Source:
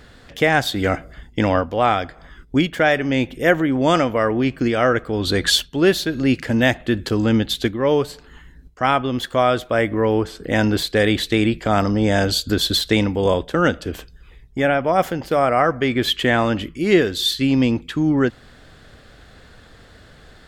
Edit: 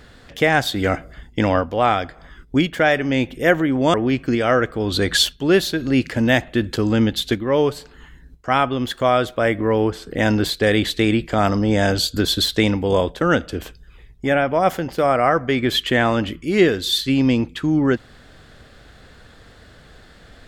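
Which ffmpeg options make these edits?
ffmpeg -i in.wav -filter_complex "[0:a]asplit=2[link_01][link_02];[link_01]atrim=end=3.942[link_03];[link_02]atrim=start=4.268[link_04];[link_03][link_04]acrossfade=duration=0.004:curve1=hsin:curve2=hsin" out.wav

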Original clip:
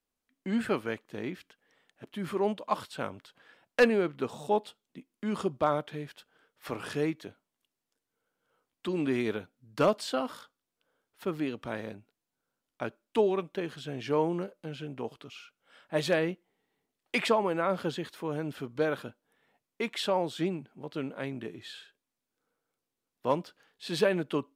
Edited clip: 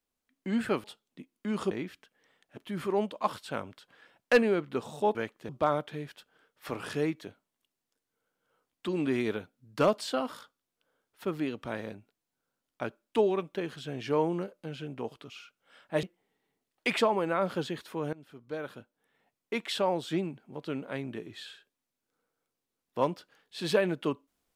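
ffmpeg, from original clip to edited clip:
ffmpeg -i in.wav -filter_complex "[0:a]asplit=7[link_01][link_02][link_03][link_04][link_05][link_06][link_07];[link_01]atrim=end=0.842[link_08];[link_02]atrim=start=4.618:end=5.492[link_09];[link_03]atrim=start=1.178:end=4.622[link_10];[link_04]atrim=start=0.838:end=1.182[link_11];[link_05]atrim=start=5.488:end=16.032[link_12];[link_06]atrim=start=16.308:end=18.41,asetpts=PTS-STARTPTS,afade=type=out:start_time=2.098:duration=0.004:curve=hsin:silence=0.112202[link_13];[link_07]atrim=start=18.41,asetpts=PTS-STARTPTS,afade=type=in:duration=1.42:silence=0.112202[link_14];[link_08][link_09]acrossfade=duration=0.004:curve1=hsin:curve2=hsin[link_15];[link_15][link_10]acrossfade=duration=0.004:curve1=hsin:curve2=hsin[link_16];[link_16][link_11]acrossfade=duration=0.004:curve1=hsin:curve2=hsin[link_17];[link_17][link_12]acrossfade=duration=0.004:curve1=hsin:curve2=hsin[link_18];[link_13][link_14]concat=n=2:v=0:a=1[link_19];[link_18][link_19]acrossfade=duration=0.004:curve1=hsin:curve2=hsin" out.wav

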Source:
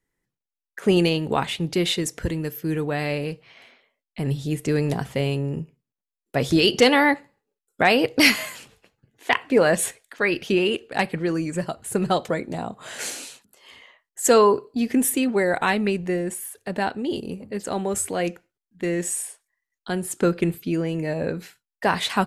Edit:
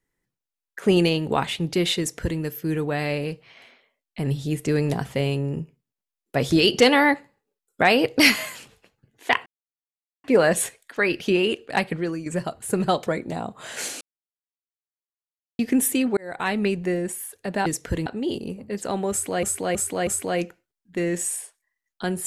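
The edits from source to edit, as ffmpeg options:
ffmpeg -i in.wav -filter_complex "[0:a]asplit=11[link_01][link_02][link_03][link_04][link_05][link_06][link_07][link_08][link_09][link_10][link_11];[link_01]atrim=end=9.46,asetpts=PTS-STARTPTS,afade=type=out:start_time=9.456:duration=0.004:curve=hsin,apad=pad_dur=0.78[link_12];[link_02]atrim=start=9.46:end=11.48,asetpts=PTS-STARTPTS,afade=type=in:duration=0.004:curve=hsin,afade=type=out:start_time=1.68:duration=0.34:silence=0.354813[link_13];[link_03]atrim=start=11.48:end=13.23,asetpts=PTS-STARTPTS,afade=type=in:duration=0.004:curve=hsin:silence=0.354813,afade=type=out:start_time=1.746:duration=0.004:curve=hsin[link_14];[link_04]atrim=start=13.23:end=14.81,asetpts=PTS-STARTPTS,volume=0[link_15];[link_05]atrim=start=14.81:end=15.39,asetpts=PTS-STARTPTS,afade=type=in:duration=0.004:curve=hsin,afade=type=out:start_time=0.576:duration=0.004:curve=hsin[link_16];[link_06]atrim=start=15.39:end=16.882,asetpts=PTS-STARTPTS,afade=type=in:duration=0.47[link_17];[link_07]atrim=start=1.988:end=2.392[link_18];[link_08]atrim=start=16.878:end=18.252[link_19];[link_09]atrim=start=17.928:end=18.252[link_20];[link_10]atrim=start=17.928:end=18.252[link_21];[link_11]atrim=start=17.928[link_22];[link_12][link_13][link_14][link_15][link_16][link_17]concat=n=6:v=0:a=1[link_23];[link_23][link_18]acrossfade=duration=0.004:curve1=hsin:curve2=hsin[link_24];[link_24][link_19]acrossfade=duration=0.004:curve1=hsin:curve2=hsin[link_25];[link_25][link_20]acrossfade=duration=0.004:curve1=hsin:curve2=hsin[link_26];[link_26][link_21]acrossfade=duration=0.004:curve1=hsin:curve2=hsin[link_27];[link_27][link_22]acrossfade=duration=0.004:curve1=hsin:curve2=hsin" out.wav

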